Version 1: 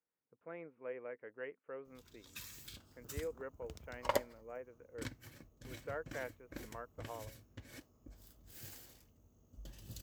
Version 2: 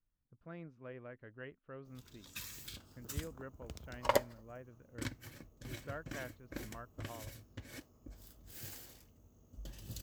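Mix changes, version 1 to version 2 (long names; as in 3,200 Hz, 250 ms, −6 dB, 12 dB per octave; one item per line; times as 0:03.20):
speech: remove loudspeaker in its box 300–2,700 Hz, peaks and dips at 470 Hz +10 dB, 880 Hz +5 dB, 2,200 Hz +7 dB
background +3.5 dB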